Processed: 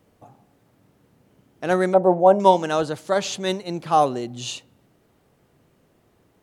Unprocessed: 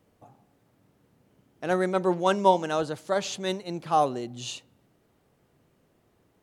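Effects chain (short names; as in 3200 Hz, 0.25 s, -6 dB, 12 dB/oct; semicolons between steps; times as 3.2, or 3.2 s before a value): 1.94–2.4 EQ curve 400 Hz 0 dB, 680 Hz +11 dB, 1200 Hz -8 dB, 5000 Hz -23 dB, 11000 Hz -9 dB; gain +5 dB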